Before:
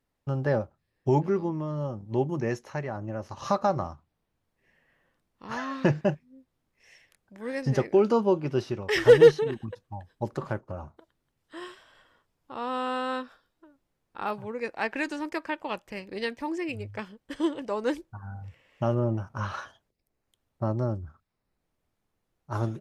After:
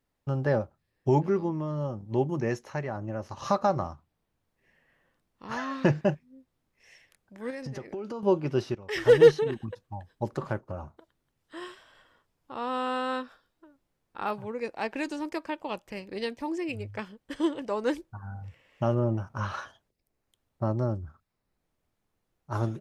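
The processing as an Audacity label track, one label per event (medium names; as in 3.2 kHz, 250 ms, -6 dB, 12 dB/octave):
7.500000	8.230000	compression, threshold -34 dBFS
8.750000	9.330000	fade in linear, from -13 dB
14.470000	16.700000	dynamic bell 1.7 kHz, up to -7 dB, over -45 dBFS, Q 1.3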